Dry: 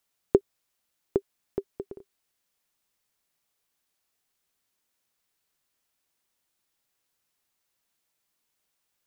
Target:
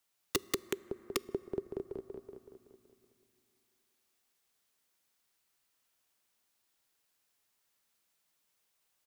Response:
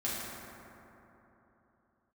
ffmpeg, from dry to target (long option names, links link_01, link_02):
-filter_complex "[0:a]lowshelf=frequency=370:gain=-3.5,aecho=1:1:188|376|564|752|940|1128|1316:0.631|0.347|0.191|0.105|0.0577|0.0318|0.0175,aeval=exprs='(mod(6.68*val(0)+1,2)-1)/6.68':channel_layout=same,asplit=2[link_01][link_02];[1:a]atrim=start_sample=2205[link_03];[link_02][link_03]afir=irnorm=-1:irlink=0,volume=-25dB[link_04];[link_01][link_04]amix=inputs=2:normalize=0,acrossover=split=370|3000[link_05][link_06][link_07];[link_06]acompressor=threshold=-45dB:ratio=2[link_08];[link_05][link_08][link_07]amix=inputs=3:normalize=0,volume=-1.5dB"